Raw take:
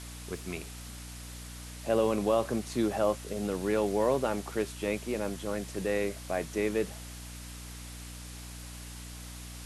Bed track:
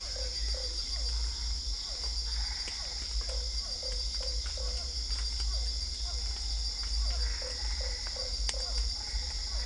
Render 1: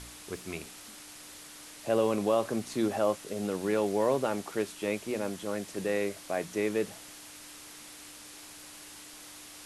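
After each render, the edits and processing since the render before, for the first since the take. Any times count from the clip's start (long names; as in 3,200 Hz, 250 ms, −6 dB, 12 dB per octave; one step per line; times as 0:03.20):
hum removal 60 Hz, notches 4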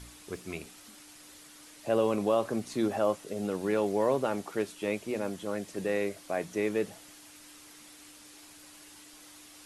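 broadband denoise 6 dB, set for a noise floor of −49 dBFS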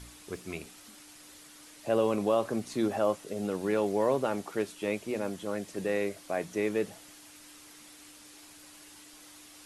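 no processing that can be heard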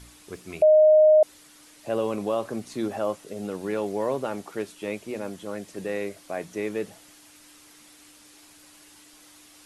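0:00.62–0:01.23: beep over 618 Hz −12 dBFS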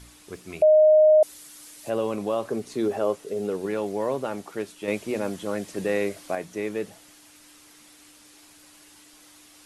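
0:01.10–0:01.90: high-shelf EQ 5,500 Hz +11.5 dB
0:02.50–0:03.66: parametric band 420 Hz +10.5 dB 0.36 octaves
0:04.88–0:06.35: clip gain +5 dB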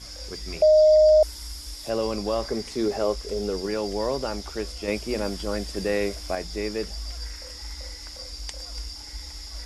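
mix in bed track −3 dB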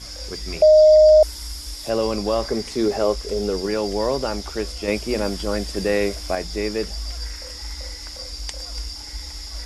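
level +4.5 dB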